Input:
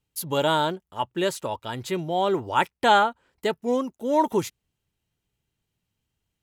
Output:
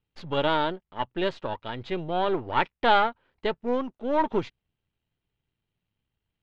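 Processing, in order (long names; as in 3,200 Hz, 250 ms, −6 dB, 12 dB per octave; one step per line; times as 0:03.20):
gain on one half-wave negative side −7 dB
low-pass filter 3,800 Hz 24 dB per octave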